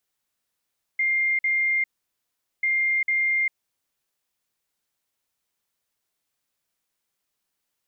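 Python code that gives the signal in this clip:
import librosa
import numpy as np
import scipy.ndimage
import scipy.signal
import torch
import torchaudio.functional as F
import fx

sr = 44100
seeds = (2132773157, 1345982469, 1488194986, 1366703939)

y = fx.beep_pattern(sr, wave='sine', hz=2110.0, on_s=0.4, off_s=0.05, beeps=2, pause_s=0.79, groups=2, level_db=-19.5)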